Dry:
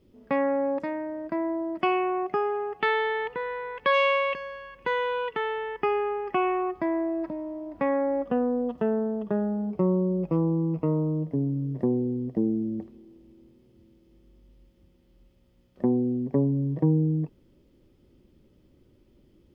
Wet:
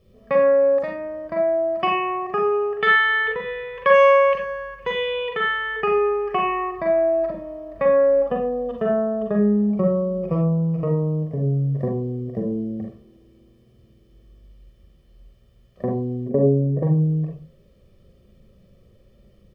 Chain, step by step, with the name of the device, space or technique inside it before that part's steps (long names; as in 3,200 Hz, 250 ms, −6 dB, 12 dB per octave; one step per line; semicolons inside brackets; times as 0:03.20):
microphone above a desk (comb filter 1.7 ms, depth 82%; convolution reverb RT60 0.30 s, pre-delay 39 ms, DRR 0 dB)
0:16.29–0:16.83: octave-band graphic EQ 125/250/500/1,000/2,000/4,000 Hz −5/+8/+4/−5/−5/−11 dB
level +1.5 dB